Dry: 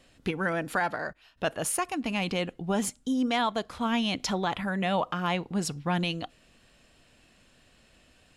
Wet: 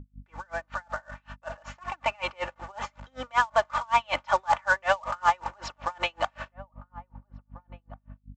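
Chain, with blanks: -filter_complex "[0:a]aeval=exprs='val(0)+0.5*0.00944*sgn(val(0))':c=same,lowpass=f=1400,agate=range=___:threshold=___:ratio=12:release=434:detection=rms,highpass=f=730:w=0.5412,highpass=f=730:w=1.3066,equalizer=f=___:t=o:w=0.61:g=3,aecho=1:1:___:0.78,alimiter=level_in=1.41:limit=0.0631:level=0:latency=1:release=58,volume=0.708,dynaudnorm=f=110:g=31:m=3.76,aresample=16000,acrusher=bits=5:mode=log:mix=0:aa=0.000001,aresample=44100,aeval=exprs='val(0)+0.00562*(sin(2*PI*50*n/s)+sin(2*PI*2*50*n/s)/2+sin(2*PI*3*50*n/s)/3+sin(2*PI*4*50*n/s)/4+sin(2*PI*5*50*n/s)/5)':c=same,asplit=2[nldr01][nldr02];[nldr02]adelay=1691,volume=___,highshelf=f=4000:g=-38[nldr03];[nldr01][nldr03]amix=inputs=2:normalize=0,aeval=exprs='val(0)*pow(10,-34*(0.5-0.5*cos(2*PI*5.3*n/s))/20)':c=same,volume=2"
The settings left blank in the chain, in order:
0.00178, 0.0126, 1100, 3.4, 0.1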